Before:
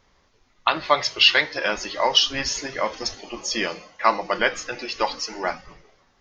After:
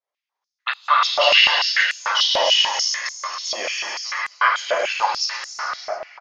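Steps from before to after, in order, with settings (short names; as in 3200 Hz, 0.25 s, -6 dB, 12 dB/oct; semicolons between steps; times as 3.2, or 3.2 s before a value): expander -47 dBFS; echo 0.273 s -7.5 dB; non-linear reverb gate 0.47 s flat, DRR -4 dB; stepped high-pass 6.8 Hz 610–7500 Hz; gain -6 dB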